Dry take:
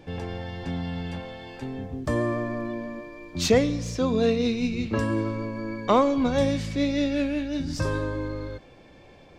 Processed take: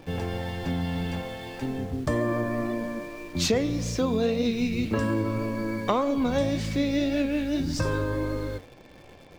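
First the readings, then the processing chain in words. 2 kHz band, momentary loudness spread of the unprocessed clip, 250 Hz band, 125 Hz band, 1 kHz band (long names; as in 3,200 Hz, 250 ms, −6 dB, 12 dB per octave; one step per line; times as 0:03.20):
0.0 dB, 14 LU, −0.5 dB, +0.5 dB, −2.5 dB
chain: flanger 1.8 Hz, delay 3.1 ms, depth 8.1 ms, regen +82%
in parallel at −8 dB: bit reduction 8 bits
on the sum: downward compressor 3 to 1, threshold −27 dBFS, peak gain reduction 9 dB
level +4.5 dB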